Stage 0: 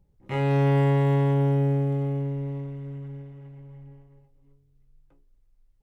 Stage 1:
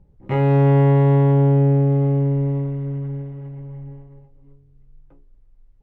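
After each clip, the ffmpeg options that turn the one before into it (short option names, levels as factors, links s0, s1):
-filter_complex "[0:a]lowpass=f=1100:p=1,asplit=2[s0][s1];[s1]alimiter=limit=0.0668:level=0:latency=1,volume=1.12[s2];[s0][s2]amix=inputs=2:normalize=0,volume=1.58"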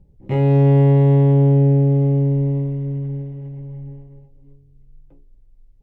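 -af "equalizer=f=1300:t=o:w=1.2:g=-12.5,volume=1.26"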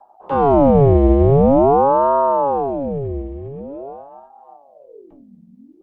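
-filter_complex "[0:a]acrossover=split=120|450|800[s0][s1][s2][s3];[s3]alimiter=level_in=3.76:limit=0.0631:level=0:latency=1,volume=0.266[s4];[s0][s1][s2][s4]amix=inputs=4:normalize=0,aeval=exprs='val(0)*sin(2*PI*500*n/s+500*0.6/0.46*sin(2*PI*0.46*n/s))':c=same,volume=1.58"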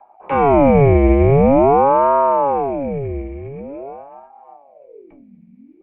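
-af "lowpass=f=2300:t=q:w=14"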